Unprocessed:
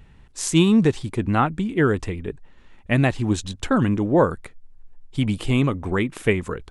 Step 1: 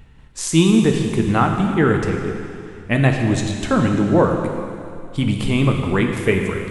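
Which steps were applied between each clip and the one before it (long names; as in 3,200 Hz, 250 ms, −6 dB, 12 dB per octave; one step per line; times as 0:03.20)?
in parallel at +1 dB: output level in coarse steps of 12 dB
on the sum: dense smooth reverb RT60 2.5 s, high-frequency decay 1×, DRR 2.5 dB
level −2 dB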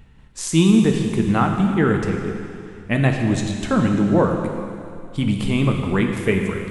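parametric band 200 Hz +4.5 dB 0.36 octaves
level −2.5 dB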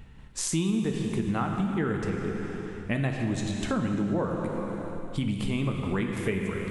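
downward compressor 3 to 1, threshold −28 dBFS, peak gain reduction 13.5 dB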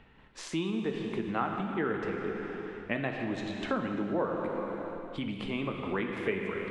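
three-way crossover with the lows and the highs turned down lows −14 dB, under 260 Hz, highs −22 dB, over 4,000 Hz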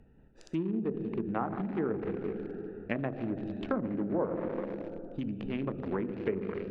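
adaptive Wiener filter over 41 samples
treble cut that deepens with the level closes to 1,000 Hz, closed at −28 dBFS
level +1 dB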